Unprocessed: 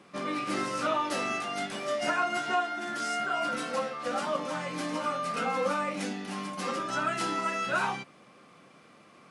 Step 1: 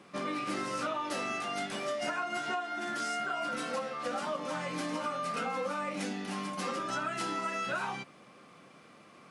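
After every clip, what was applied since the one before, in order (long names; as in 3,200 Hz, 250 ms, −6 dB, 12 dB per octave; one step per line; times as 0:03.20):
downward compressor, threshold −31 dBFS, peak gain reduction 8.5 dB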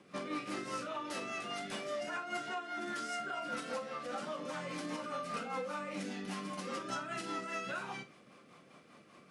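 brickwall limiter −27 dBFS, peak gain reduction 4.5 dB
rotating-speaker cabinet horn 5 Hz
on a send: flutter between parallel walls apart 7.3 metres, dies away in 0.22 s
on the sum: level −1.5 dB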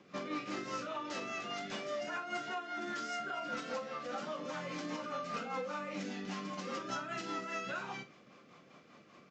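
downsampling to 16,000 Hz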